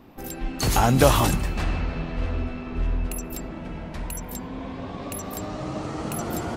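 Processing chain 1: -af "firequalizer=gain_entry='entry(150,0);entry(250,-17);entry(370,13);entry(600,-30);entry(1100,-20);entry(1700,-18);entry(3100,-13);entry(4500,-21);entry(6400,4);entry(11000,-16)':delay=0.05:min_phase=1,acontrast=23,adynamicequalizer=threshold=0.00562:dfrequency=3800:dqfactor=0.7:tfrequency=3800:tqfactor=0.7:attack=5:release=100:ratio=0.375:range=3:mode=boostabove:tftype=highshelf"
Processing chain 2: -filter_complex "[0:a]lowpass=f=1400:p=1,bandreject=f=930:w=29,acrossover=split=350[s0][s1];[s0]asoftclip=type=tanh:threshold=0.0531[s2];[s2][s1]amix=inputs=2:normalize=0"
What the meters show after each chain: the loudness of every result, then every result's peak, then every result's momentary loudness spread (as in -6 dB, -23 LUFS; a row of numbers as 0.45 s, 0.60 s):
-23.5 LUFS, -30.5 LUFS; -4.0 dBFS, -7.0 dBFS; 15 LU, 14 LU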